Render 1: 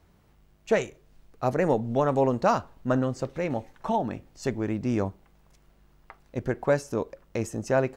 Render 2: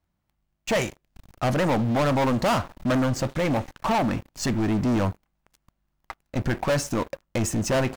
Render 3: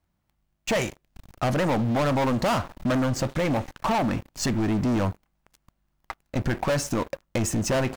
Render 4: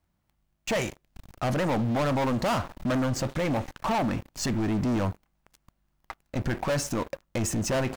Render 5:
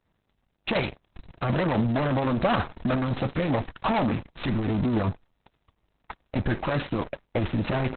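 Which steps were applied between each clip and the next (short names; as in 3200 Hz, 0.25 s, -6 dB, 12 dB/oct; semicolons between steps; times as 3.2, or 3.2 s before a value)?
bell 430 Hz -13 dB 0.28 oct; sample leveller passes 5; gain -6 dB
compressor 2.5:1, threshold -25 dBFS, peak gain reduction 3.5 dB; gain +2 dB
limiter -22.5 dBFS, peak gain reduction 4.5 dB
CVSD 32 kbps; gain +4 dB; Opus 6 kbps 48000 Hz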